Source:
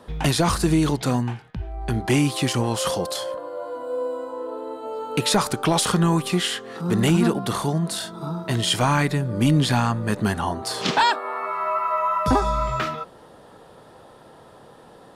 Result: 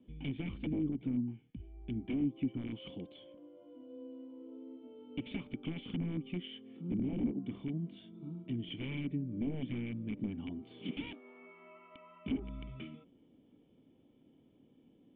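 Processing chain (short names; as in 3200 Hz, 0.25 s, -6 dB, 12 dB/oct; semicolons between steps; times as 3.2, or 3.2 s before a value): wrapped overs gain 12.5 dB; vocal tract filter i; treble ducked by the level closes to 950 Hz, closed at -25.5 dBFS; gain -5.5 dB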